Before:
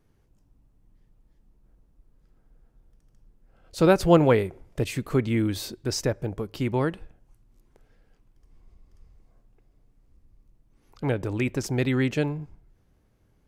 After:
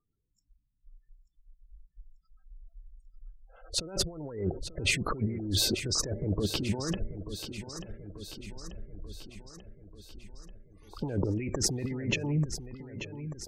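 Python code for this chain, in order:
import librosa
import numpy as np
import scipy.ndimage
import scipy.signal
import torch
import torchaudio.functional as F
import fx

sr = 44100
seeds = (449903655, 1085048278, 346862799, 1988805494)

p1 = fx.noise_reduce_blind(x, sr, reduce_db=27)
p2 = fx.spec_gate(p1, sr, threshold_db=-20, keep='strong')
p3 = fx.over_compress(p2, sr, threshold_db=-34.0, ratio=-1.0)
p4 = p3 + fx.echo_feedback(p3, sr, ms=888, feedback_pct=59, wet_db=-11.0, dry=0)
p5 = fx.doppler_dist(p4, sr, depth_ms=0.14)
y = p5 * librosa.db_to_amplitude(1.5)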